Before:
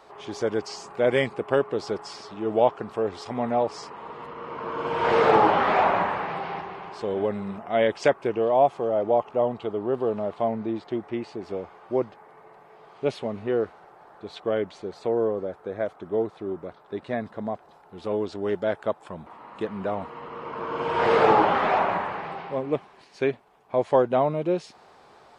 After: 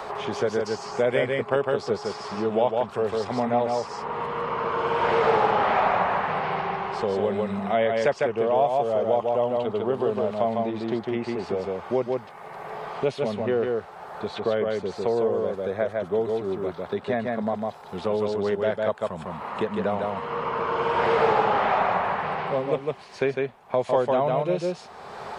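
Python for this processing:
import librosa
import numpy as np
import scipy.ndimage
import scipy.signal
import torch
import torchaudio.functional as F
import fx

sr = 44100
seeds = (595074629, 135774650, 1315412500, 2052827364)

y = fx.peak_eq(x, sr, hz=310.0, db=-13.0, octaves=0.24)
y = y + 10.0 ** (-3.5 / 20.0) * np.pad(y, (int(152 * sr / 1000.0), 0))[:len(y)]
y = fx.band_squash(y, sr, depth_pct=70)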